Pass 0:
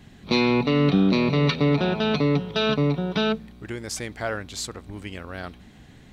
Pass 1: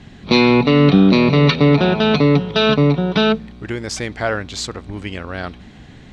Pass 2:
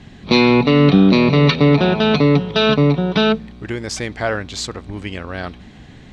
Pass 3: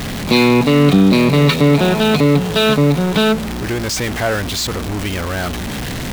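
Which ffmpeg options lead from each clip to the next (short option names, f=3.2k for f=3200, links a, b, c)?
-af "lowpass=6.2k,volume=8dB"
-af "bandreject=f=1.4k:w=29"
-af "aeval=exprs='val(0)+0.5*0.133*sgn(val(0))':c=same,volume=-1dB"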